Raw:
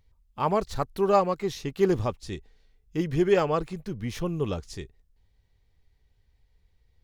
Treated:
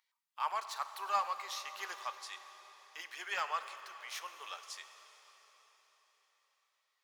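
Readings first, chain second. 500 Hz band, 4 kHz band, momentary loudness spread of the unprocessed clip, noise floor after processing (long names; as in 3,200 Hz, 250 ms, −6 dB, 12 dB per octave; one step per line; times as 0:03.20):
−26.0 dB, −2.5 dB, 16 LU, −84 dBFS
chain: high-pass filter 1,000 Hz 24 dB per octave
in parallel at −8 dB: gain into a clipping stage and back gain 32.5 dB
on the sum: dense smooth reverb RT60 4.6 s, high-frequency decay 0.95×, DRR 9 dB
level −5.5 dB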